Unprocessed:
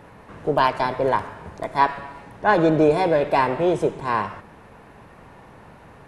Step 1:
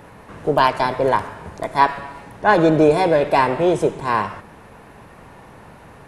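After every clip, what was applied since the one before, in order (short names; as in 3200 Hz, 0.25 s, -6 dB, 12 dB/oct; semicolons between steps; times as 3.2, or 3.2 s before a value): high shelf 6900 Hz +7 dB; gain +3 dB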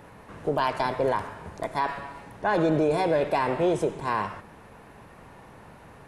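limiter -9.5 dBFS, peak gain reduction 8.5 dB; gain -5.5 dB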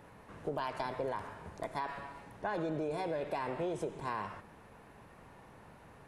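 compressor, threshold -25 dBFS, peak gain reduction 6 dB; gain -7.5 dB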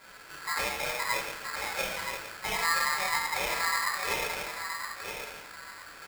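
feedback echo 0.972 s, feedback 23%, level -6.5 dB; shoebox room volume 760 m³, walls furnished, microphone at 5.4 m; polarity switched at an audio rate 1500 Hz; gain -3 dB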